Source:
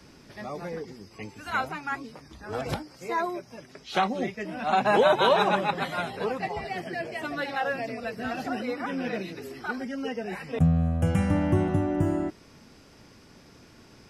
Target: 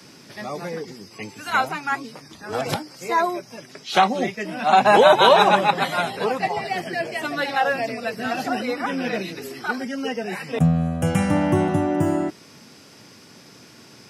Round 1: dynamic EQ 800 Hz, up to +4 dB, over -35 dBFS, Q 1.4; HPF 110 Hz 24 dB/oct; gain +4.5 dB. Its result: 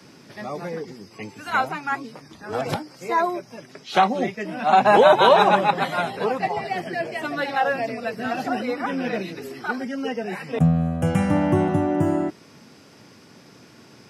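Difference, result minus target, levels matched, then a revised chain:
4000 Hz band -3.5 dB
dynamic EQ 800 Hz, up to +4 dB, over -35 dBFS, Q 1.4; HPF 110 Hz 24 dB/oct; high shelf 2700 Hz +7 dB; gain +4.5 dB

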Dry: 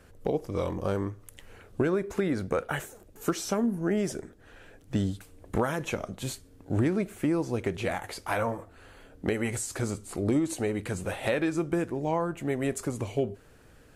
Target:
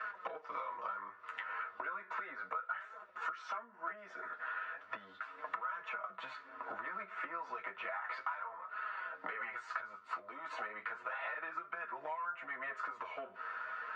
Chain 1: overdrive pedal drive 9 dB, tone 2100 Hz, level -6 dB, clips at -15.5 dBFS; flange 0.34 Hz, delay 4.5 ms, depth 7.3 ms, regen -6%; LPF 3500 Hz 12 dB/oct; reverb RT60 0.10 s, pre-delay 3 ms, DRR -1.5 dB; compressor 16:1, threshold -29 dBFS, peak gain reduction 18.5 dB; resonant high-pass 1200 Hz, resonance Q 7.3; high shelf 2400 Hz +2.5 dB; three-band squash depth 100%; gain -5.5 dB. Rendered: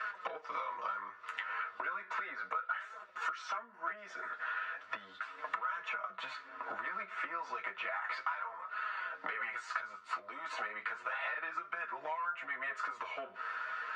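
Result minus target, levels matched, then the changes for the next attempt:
4000 Hz band +4.0 dB
change: high shelf 2400 Hz -9 dB

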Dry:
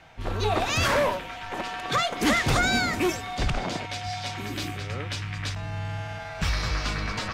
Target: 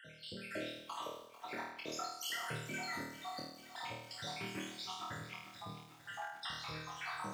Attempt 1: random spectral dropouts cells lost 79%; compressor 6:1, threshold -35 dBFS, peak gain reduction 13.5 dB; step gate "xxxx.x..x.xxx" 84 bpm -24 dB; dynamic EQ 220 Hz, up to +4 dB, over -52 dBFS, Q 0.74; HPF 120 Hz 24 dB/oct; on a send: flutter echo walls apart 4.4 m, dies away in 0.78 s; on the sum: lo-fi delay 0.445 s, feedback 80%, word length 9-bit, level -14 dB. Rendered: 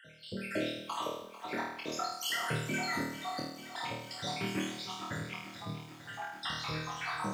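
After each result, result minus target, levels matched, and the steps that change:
compressor: peak gain reduction -6.5 dB; 250 Hz band +3.5 dB
change: compressor 6:1, threshold -43 dBFS, peak gain reduction 20.5 dB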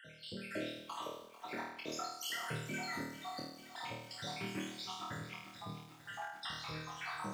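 250 Hz band +2.5 dB
remove: dynamic EQ 220 Hz, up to +4 dB, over -52 dBFS, Q 0.74

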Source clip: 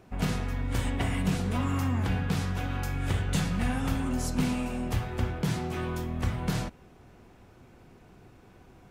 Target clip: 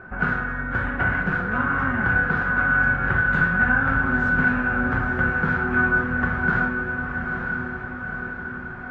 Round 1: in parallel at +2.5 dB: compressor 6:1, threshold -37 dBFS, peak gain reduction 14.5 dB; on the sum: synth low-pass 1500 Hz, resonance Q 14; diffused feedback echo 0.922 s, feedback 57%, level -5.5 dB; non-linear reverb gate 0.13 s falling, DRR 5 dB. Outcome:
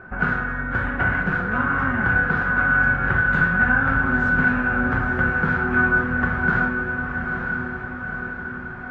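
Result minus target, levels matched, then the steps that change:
compressor: peak gain reduction -5.5 dB
change: compressor 6:1, threshold -43.5 dBFS, peak gain reduction 20 dB

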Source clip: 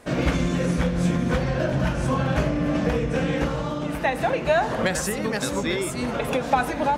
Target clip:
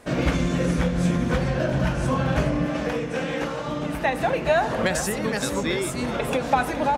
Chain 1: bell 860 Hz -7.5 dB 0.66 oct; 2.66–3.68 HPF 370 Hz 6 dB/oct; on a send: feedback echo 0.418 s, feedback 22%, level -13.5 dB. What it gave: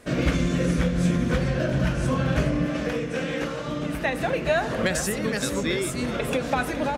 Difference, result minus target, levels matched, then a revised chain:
1000 Hz band -4.5 dB
2.66–3.68 HPF 370 Hz 6 dB/oct; on a send: feedback echo 0.418 s, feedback 22%, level -13.5 dB

